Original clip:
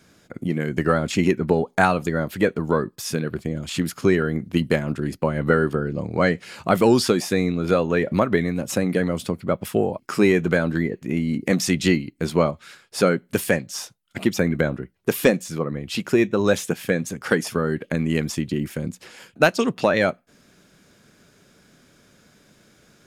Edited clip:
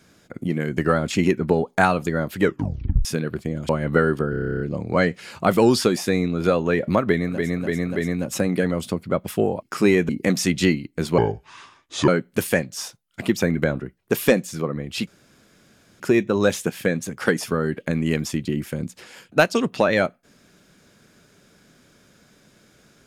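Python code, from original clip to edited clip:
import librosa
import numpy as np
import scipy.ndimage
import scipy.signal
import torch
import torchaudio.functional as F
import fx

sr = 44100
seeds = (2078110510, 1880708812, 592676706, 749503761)

y = fx.edit(x, sr, fx.tape_stop(start_s=2.4, length_s=0.65),
    fx.cut(start_s=3.69, length_s=1.54),
    fx.stutter(start_s=5.84, slice_s=0.03, count=11),
    fx.repeat(start_s=8.34, length_s=0.29, count=4, crossfade_s=0.24),
    fx.cut(start_s=10.46, length_s=0.86),
    fx.speed_span(start_s=12.41, length_s=0.64, speed=0.71),
    fx.insert_room_tone(at_s=16.04, length_s=0.93), tone=tone)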